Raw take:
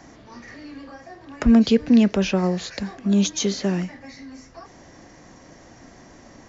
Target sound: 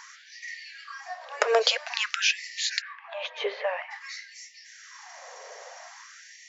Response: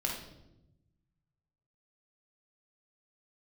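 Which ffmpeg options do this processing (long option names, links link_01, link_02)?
-filter_complex "[0:a]asplit=3[link_01][link_02][link_03];[link_01]afade=type=out:start_time=2.8:duration=0.02[link_04];[link_02]highpass=150,equalizer=frequency=460:width_type=q:width=4:gain=-4,equalizer=frequency=700:width_type=q:width=4:gain=-4,equalizer=frequency=1400:width_type=q:width=4:gain=-9,lowpass=frequency=2400:width=0.5412,lowpass=frequency=2400:width=1.3066,afade=type=in:start_time=2.8:duration=0.02,afade=type=out:start_time=3.9:duration=0.02[link_05];[link_03]afade=type=in:start_time=3.9:duration=0.02[link_06];[link_04][link_05][link_06]amix=inputs=3:normalize=0,afftfilt=real='re*gte(b*sr/1024,400*pow(1800/400,0.5+0.5*sin(2*PI*0.5*pts/sr)))':imag='im*gte(b*sr/1024,400*pow(1800/400,0.5+0.5*sin(2*PI*0.5*pts/sr)))':win_size=1024:overlap=0.75,volume=6.5dB"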